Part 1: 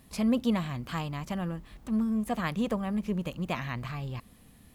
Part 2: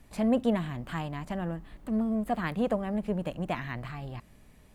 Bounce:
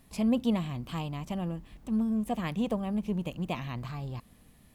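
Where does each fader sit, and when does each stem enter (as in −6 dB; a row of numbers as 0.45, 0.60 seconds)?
−3.5, −9.0 decibels; 0.00, 0.00 seconds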